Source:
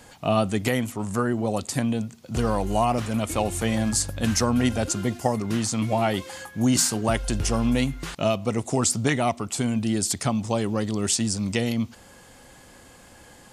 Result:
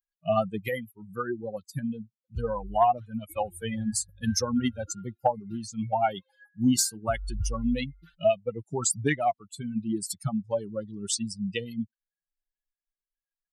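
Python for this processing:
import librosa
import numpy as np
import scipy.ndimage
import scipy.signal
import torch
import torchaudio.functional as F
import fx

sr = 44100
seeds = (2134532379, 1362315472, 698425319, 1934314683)

y = fx.bin_expand(x, sr, power=3.0)
y = fx.dynamic_eq(y, sr, hz=750.0, q=2.6, threshold_db=-45.0, ratio=4.0, max_db=6)
y = fx.cheby_harmonics(y, sr, harmonics=(2, 4), levels_db=(-22, -33), full_scale_db=-11.0)
y = F.gain(torch.from_numpy(y), 1.5).numpy()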